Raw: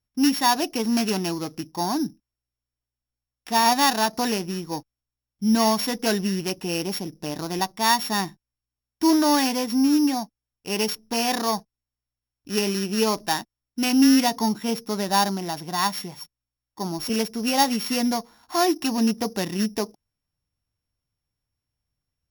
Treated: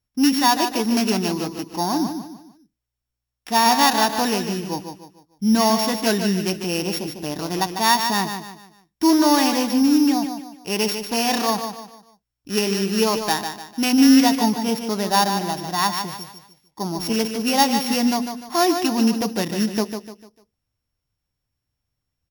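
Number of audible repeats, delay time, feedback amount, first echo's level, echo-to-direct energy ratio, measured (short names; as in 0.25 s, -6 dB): 4, 0.149 s, 37%, -7.5 dB, -7.0 dB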